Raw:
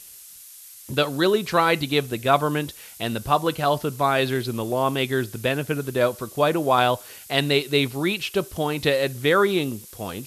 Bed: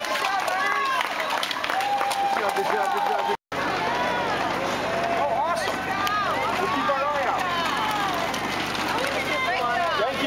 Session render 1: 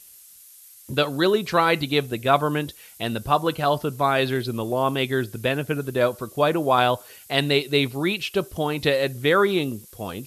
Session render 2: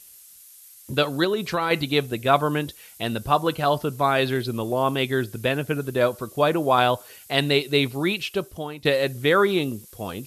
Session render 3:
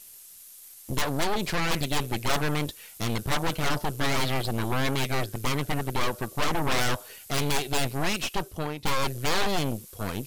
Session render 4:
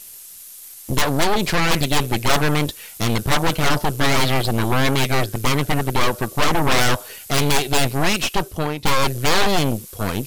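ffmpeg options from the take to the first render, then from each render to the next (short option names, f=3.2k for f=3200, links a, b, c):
-af "afftdn=nr=6:nf=-44"
-filter_complex "[0:a]asettb=1/sr,asplit=3[a][b][c];[a]atrim=end=1.244[d];[b]atrim=start=1.24:end=1.71,asetpts=PTS-STARTPTS,afade=t=in:d=0.004:c=qsin,afade=t=out:st=0.466:d=0.004:c=qsin,acompressor=threshold=-19dB:ratio=6:attack=3.2:release=140:knee=1:detection=peak[e];[c]atrim=start=1.706[f];[d][e]acrossfade=d=0.004:c1=hsin:c2=qsin[g];[g][f]acrossfade=d=0.004:c1=qsin:c2=hsin,asplit=2[h][i];[h]atrim=end=8.85,asetpts=PTS-STARTPTS,afade=t=out:st=8.17:d=0.68:silence=0.188365[j];[i]atrim=start=8.85,asetpts=PTS-STARTPTS,afade=t=in:d=0.004:c=hsin:silence=0.188365[k];[j][k]concat=n=2:v=0:a=1"
-af "aeval=exprs='0.596*(cos(1*acos(clip(val(0)/0.596,-1,1)))-cos(1*PI/2))+0.211*(cos(8*acos(clip(val(0)/0.596,-1,1)))-cos(8*PI/2))':c=same,asoftclip=type=tanh:threshold=-19dB"
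-af "volume=8.5dB"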